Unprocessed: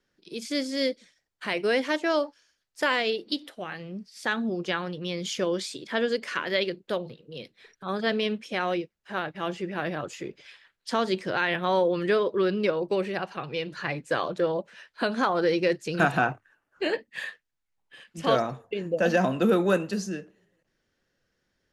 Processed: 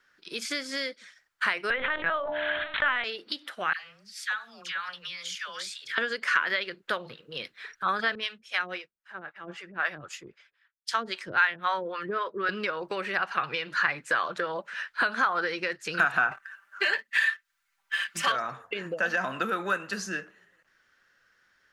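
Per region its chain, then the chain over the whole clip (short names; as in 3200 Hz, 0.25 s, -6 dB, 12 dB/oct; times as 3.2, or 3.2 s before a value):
1.7–3.04 LPC vocoder at 8 kHz pitch kept + de-hum 74.97 Hz, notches 13 + sustainer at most 22 dB/s
3.73–5.98 passive tone stack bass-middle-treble 10-0-10 + compressor 3:1, threshold -42 dBFS + dispersion lows, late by 0.103 s, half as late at 740 Hz
8.15–12.49 harmonic tremolo 3.8 Hz, depth 100%, crossover 500 Hz + three-band expander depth 100%
16.31–18.32 tilt shelf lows -5.5 dB, about 890 Hz + comb 5.1 ms, depth 97% + sample leveller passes 1
whole clip: tilt shelf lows -5 dB, about 1100 Hz; compressor 6:1, threshold -33 dBFS; bell 1400 Hz +15 dB 1.4 oct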